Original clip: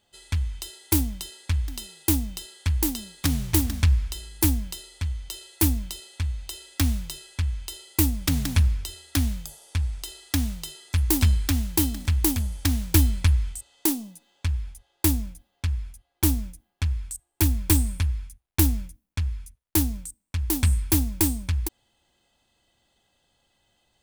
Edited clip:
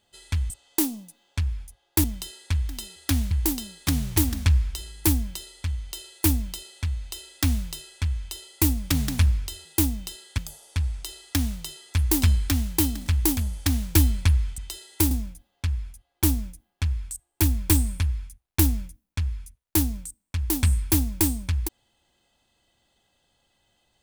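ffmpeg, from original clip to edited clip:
-filter_complex "[0:a]asplit=9[a][b][c][d][e][f][g][h][i];[a]atrim=end=0.502[j];[b]atrim=start=13.568:end=15.112[k];[c]atrim=start=1.028:end=1.952[l];[d]atrim=start=9.018:end=9.372[m];[e]atrim=start=2.678:end=9.022[n];[f]atrim=start=1.948:end=2.682[o];[g]atrim=start=9.368:end=13.572[p];[h]atrim=start=0.498:end=1.032[q];[i]atrim=start=15.108[r];[j][k]acrossfade=d=0.004:c1=hsin:c2=hsin[s];[s][l]acrossfade=d=0.004:c1=hsin:c2=hsin[t];[t][m]acrossfade=d=0.004:c1=hsin:c2=hsin[u];[u][n]acrossfade=d=0.004:c1=hsin:c2=hsin[v];[v][o]acrossfade=d=0.004:c1=hsin:c2=hsin[w];[w][p]acrossfade=d=0.004:c1=hsin:c2=hsin[x];[x][q]acrossfade=d=0.004:c1=hsin:c2=hsin[y];[y][r]acrossfade=d=0.004:c1=hsin:c2=hsin"

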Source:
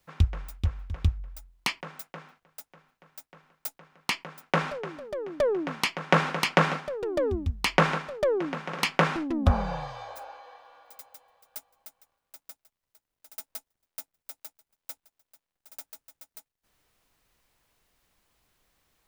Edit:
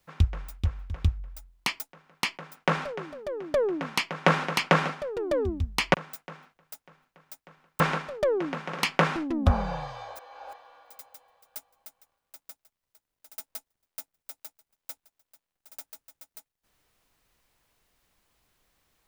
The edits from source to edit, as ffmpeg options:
-filter_complex "[0:a]asplit=6[a][b][c][d][e][f];[a]atrim=end=1.802[g];[b]atrim=start=3.658:end=7.802[h];[c]atrim=start=1.798:end=3.662[i];[d]atrim=start=7.798:end=10.192[j];[e]atrim=start=10.188:end=10.532,asetpts=PTS-STARTPTS,areverse[k];[f]atrim=start=10.528[l];[g][h]acrossfade=d=0.004:c1=hsin:c2=hsin[m];[m][i]acrossfade=d=0.004:c1=hsin:c2=hsin[n];[n][j]acrossfade=d=0.004:c1=hsin:c2=hsin[o];[o][k]acrossfade=d=0.004:c1=hsin:c2=hsin[p];[p][l]acrossfade=d=0.004:c1=hsin:c2=hsin"

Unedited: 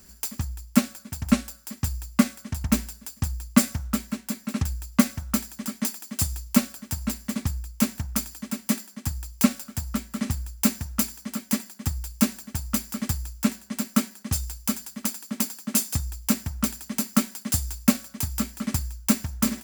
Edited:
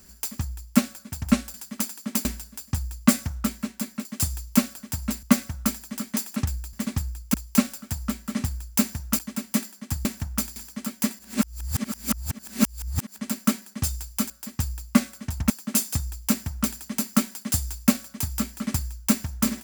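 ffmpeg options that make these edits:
-filter_complex "[0:a]asplit=15[a][b][c][d][e][f][g][h][i][j][k][l][m][n][o];[a]atrim=end=1.542[p];[b]atrim=start=14.788:end=15.502[q];[c]atrim=start=2.738:end=4.542[r];[d]atrim=start=6.038:end=7.222[s];[e]atrim=start=4.908:end=6.042[t];[f]atrim=start=4.538:end=4.912[u];[g]atrim=start=7.218:end=7.832[v];[h]atrim=start=9.198:end=11.052[w];[i]atrim=start=8.338:end=9.202[x];[j]atrim=start=7.828:end=8.342[y];[k]atrim=start=11.048:end=11.682[z];[l]atrim=start=11.678:end=13.672,asetpts=PTS-STARTPTS,areverse[aa];[m]atrim=start=13.668:end=14.792[ab];[n]atrim=start=1.538:end=2.742[ac];[o]atrim=start=15.498[ad];[p][q]acrossfade=d=0.004:c1=hsin:c2=hsin[ae];[ae][r]acrossfade=d=0.004:c1=hsin:c2=hsin[af];[af][s]acrossfade=d=0.004:c1=hsin:c2=hsin[ag];[ag][t]acrossfade=d=0.004:c1=hsin:c2=hsin[ah];[ah][u]acrossfade=d=0.004:c1=hsin:c2=hsin[ai];[ai][v]acrossfade=d=0.004:c1=hsin:c2=hsin[aj];[aj][w]acrossfade=d=0.004:c1=hsin:c2=hsin[ak];[ak][x]acrossfade=d=0.004:c1=hsin:c2=hsin[al];[al][y]acrossfade=d=0.004:c1=hsin:c2=hsin[am];[am][z]acrossfade=d=0.004:c1=hsin:c2=hsin[an];[an][aa]acrossfade=d=0.004:c1=hsin:c2=hsin[ao];[ao][ab]acrossfade=d=0.004:c1=hsin:c2=hsin[ap];[ap][ac]acrossfade=d=0.004:c1=hsin:c2=hsin[aq];[aq][ad]acrossfade=d=0.004:c1=hsin:c2=hsin"

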